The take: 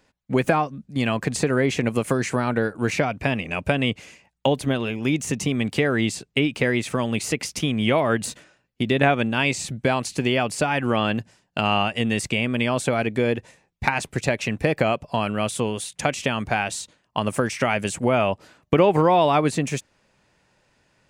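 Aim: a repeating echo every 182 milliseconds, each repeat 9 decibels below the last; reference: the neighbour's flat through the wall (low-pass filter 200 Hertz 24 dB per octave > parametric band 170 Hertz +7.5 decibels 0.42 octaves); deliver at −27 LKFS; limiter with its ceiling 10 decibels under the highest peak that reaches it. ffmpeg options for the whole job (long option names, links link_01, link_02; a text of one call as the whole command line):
ffmpeg -i in.wav -af "alimiter=limit=-13dB:level=0:latency=1,lowpass=frequency=200:width=0.5412,lowpass=frequency=200:width=1.3066,equalizer=frequency=170:width_type=o:width=0.42:gain=7.5,aecho=1:1:182|364|546|728:0.355|0.124|0.0435|0.0152,volume=3.5dB" out.wav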